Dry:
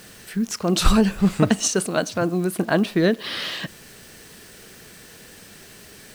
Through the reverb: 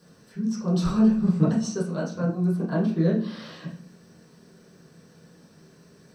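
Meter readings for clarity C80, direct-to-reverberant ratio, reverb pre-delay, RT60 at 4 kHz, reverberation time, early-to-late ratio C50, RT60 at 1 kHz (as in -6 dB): 11.5 dB, -11.0 dB, 3 ms, 0.40 s, 0.45 s, 7.0 dB, 0.45 s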